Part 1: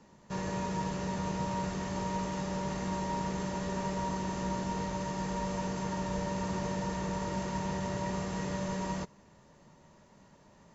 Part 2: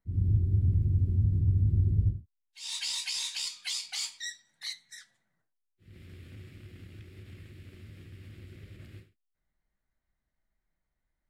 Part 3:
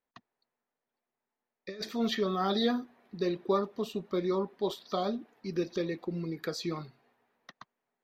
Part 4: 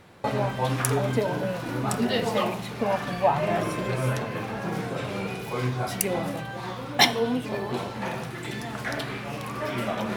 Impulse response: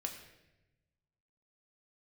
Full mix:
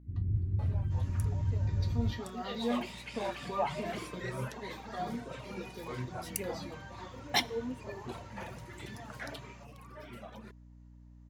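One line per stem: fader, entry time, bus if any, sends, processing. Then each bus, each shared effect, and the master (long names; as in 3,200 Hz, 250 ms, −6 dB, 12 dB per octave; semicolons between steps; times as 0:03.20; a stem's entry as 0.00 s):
−17.0 dB, 0.60 s, no send, high-pass filter 610 Hz
−6.0 dB, 0.00 s, no send, high shelf with overshoot 3,300 Hz −13.5 dB, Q 1.5
−1.0 dB, 0.00 s, no send, tuned comb filter 240 Hz, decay 0.16 s, harmonics all, mix 90%
0:02.07 −23.5 dB → 0:02.85 −11.5 dB → 0:09.31 −11.5 dB → 0:09.67 −18.5 dB, 0.35 s, send −15 dB, reverb reduction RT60 1.8 s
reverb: on, RT60 1.0 s, pre-delay 4 ms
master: mains hum 60 Hz, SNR 18 dB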